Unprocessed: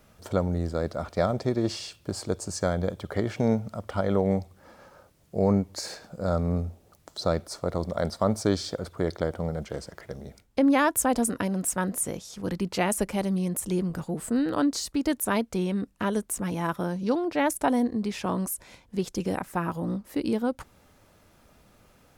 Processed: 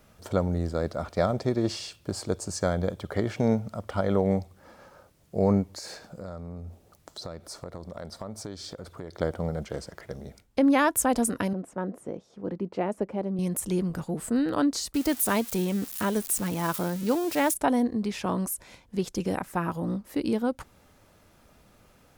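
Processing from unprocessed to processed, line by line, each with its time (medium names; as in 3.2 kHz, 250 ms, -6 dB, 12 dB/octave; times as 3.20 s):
5.70–9.17 s: compression 4:1, threshold -36 dBFS
11.53–13.39 s: band-pass filter 400 Hz, Q 0.8
14.94–17.54 s: zero-crossing glitches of -26 dBFS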